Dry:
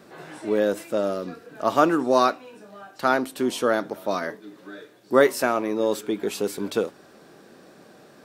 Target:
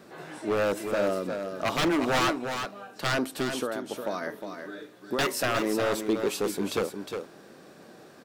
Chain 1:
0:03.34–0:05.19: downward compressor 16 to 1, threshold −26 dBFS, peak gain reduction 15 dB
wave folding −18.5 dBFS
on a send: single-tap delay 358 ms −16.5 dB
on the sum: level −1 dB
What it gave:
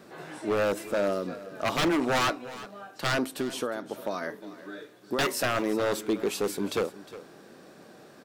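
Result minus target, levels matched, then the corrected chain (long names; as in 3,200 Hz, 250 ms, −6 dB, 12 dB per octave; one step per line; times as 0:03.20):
echo-to-direct −9.5 dB
0:03.34–0:05.19: downward compressor 16 to 1, threshold −26 dBFS, peak gain reduction 15 dB
wave folding −18.5 dBFS
on a send: single-tap delay 358 ms −7 dB
on the sum: level −1 dB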